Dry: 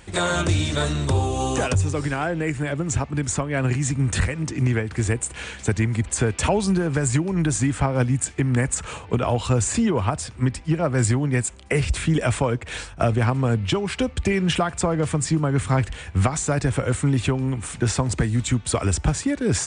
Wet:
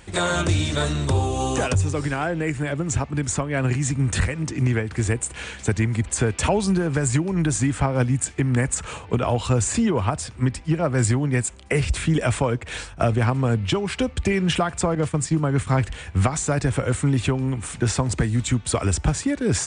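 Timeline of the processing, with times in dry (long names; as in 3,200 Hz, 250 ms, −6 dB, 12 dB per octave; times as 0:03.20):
0:14.95–0:15.67: downward expander −24 dBFS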